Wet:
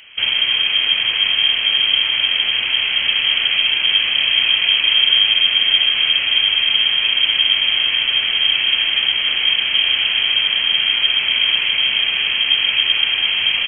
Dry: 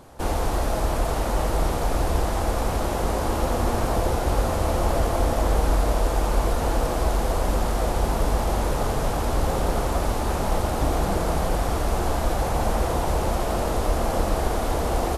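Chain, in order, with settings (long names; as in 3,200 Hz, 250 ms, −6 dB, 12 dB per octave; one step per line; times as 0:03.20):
speed change +11%
voice inversion scrambler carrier 3,200 Hz
level +4.5 dB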